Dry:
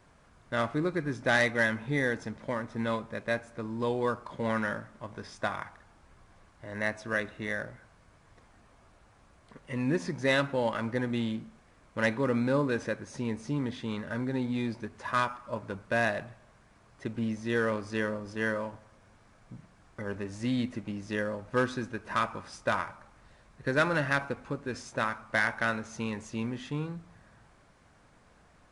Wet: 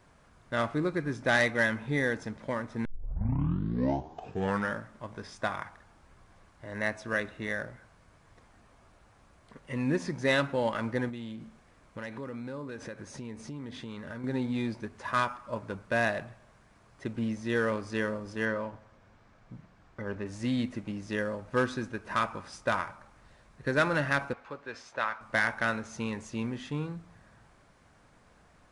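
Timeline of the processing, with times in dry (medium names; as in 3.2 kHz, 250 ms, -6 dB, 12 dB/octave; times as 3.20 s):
2.85 s: tape start 1.88 s
11.09–14.24 s: compression 5:1, threshold -37 dBFS
18.45–20.26 s: distance through air 90 m
24.33–25.21 s: three-band isolator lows -14 dB, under 490 Hz, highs -16 dB, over 5.2 kHz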